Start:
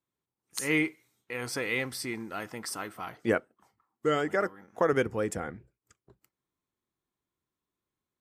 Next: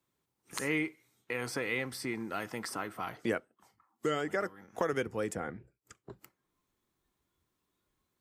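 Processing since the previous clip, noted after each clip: spectral noise reduction 10 dB; three bands compressed up and down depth 70%; trim -4 dB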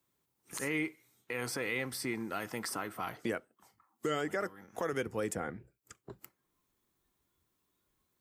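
treble shelf 9.7 kHz +7.5 dB; peak limiter -23.5 dBFS, peak gain reduction 7.5 dB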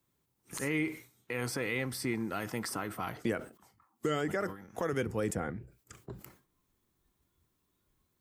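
bass shelf 210 Hz +8.5 dB; decay stretcher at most 140 dB/s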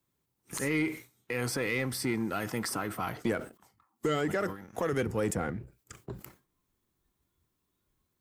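waveshaping leveller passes 1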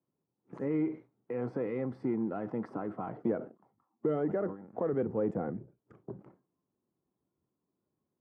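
Butterworth band-pass 350 Hz, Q 0.52

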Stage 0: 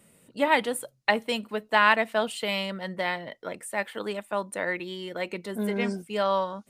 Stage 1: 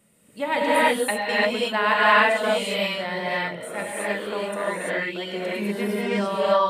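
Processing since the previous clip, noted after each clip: gated-style reverb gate 370 ms rising, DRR -8 dB; trim -4 dB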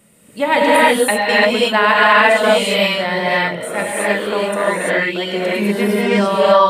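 loudness maximiser +10.5 dB; trim -1 dB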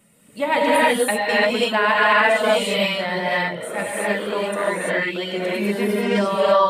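coarse spectral quantiser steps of 15 dB; trim -4.5 dB

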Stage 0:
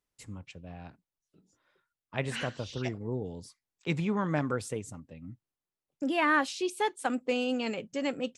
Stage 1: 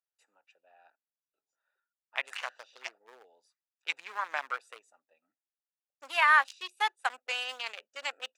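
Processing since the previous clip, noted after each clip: local Wiener filter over 41 samples; high-pass 900 Hz 24 dB/octave; treble shelf 6.8 kHz +5.5 dB; trim +5.5 dB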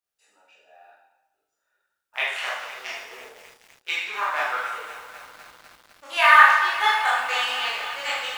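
block-companded coder 7-bit; reverberation RT60 1.0 s, pre-delay 14 ms, DRR -8 dB; bit-crushed delay 251 ms, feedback 80%, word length 7-bit, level -13 dB; trim +1 dB

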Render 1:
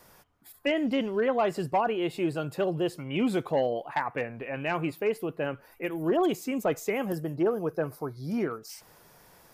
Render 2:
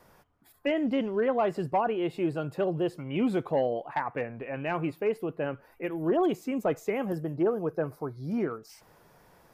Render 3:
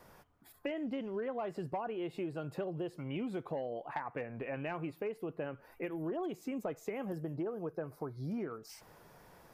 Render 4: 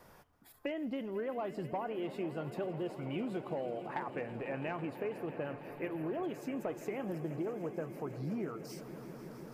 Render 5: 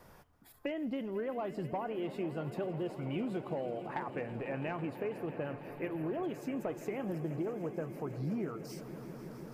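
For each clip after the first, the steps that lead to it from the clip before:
treble shelf 2.8 kHz -10 dB
compression 6:1, threshold -36 dBFS, peak gain reduction 13.5 dB
echo with a slow build-up 165 ms, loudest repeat 5, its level -17 dB
bass shelf 170 Hz +5 dB

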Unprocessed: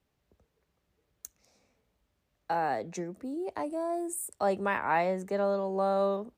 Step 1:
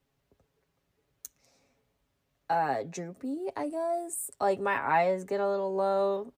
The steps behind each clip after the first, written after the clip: comb 7.3 ms, depth 53%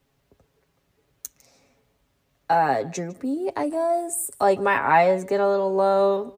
delay 153 ms -22.5 dB; trim +8 dB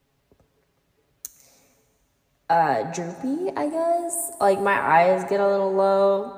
plate-style reverb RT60 2.4 s, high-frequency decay 0.8×, DRR 12 dB

